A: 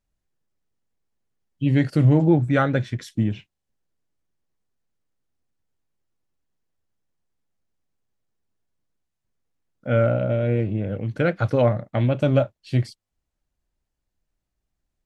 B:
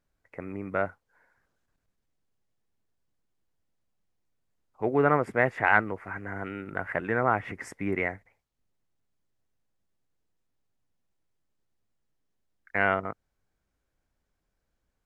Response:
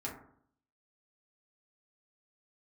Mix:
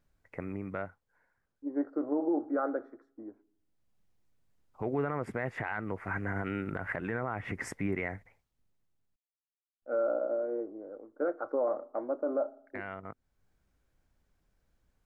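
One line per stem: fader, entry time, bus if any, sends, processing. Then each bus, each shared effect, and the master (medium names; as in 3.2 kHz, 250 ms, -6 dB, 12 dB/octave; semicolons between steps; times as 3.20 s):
-5.5 dB, 0.00 s, send -19 dB, elliptic band-pass 310–1300 Hz, stop band 40 dB; gate with hold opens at -47 dBFS; three bands expanded up and down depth 70%
+2.5 dB, 0.00 s, muted 9.16–9.82 s, no send, tone controls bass +4 dB, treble -1 dB; compression 2:1, threshold -32 dBFS, peak gain reduction 9.5 dB; auto duck -13 dB, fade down 1.65 s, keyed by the first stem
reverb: on, RT60 0.60 s, pre-delay 4 ms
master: peak limiter -22 dBFS, peak gain reduction 11.5 dB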